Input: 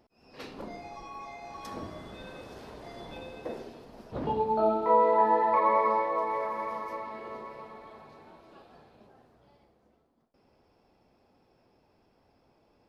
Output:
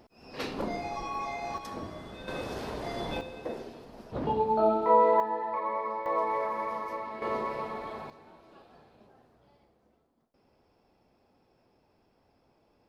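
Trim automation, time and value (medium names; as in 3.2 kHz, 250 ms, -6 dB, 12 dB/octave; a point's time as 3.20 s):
+8 dB
from 1.58 s +0.5 dB
from 2.28 s +9 dB
from 3.21 s +1 dB
from 5.20 s -8 dB
from 6.06 s +1 dB
from 7.22 s +9.5 dB
from 8.10 s -1.5 dB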